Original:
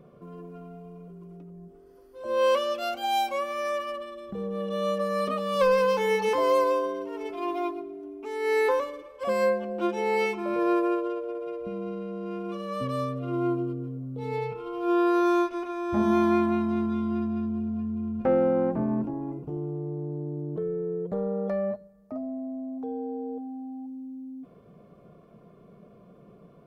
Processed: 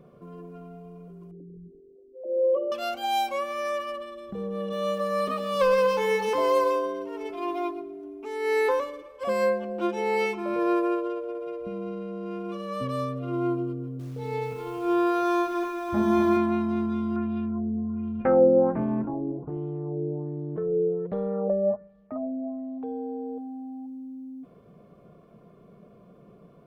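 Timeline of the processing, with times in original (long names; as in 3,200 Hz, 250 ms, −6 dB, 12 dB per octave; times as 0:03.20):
0:01.31–0:02.72: spectral envelope exaggerated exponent 3
0:04.60–0:06.76: feedback echo at a low word length 125 ms, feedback 35%, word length 8 bits, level −12 dB
0:13.74–0:16.37: feedback echo at a low word length 254 ms, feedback 35%, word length 8 bits, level −7.5 dB
0:17.16–0:22.86: auto-filter low-pass sine 1.3 Hz 450–3,500 Hz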